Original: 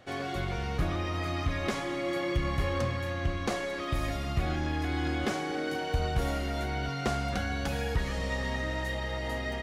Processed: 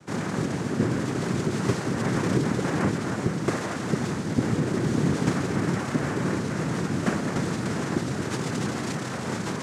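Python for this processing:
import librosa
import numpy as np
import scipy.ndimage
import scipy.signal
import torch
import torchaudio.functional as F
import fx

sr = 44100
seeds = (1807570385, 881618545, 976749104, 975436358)

y = fx.noise_vocoder(x, sr, seeds[0], bands=3)
y = fx.peak_eq(y, sr, hz=160.0, db=12.0, octaves=2.7)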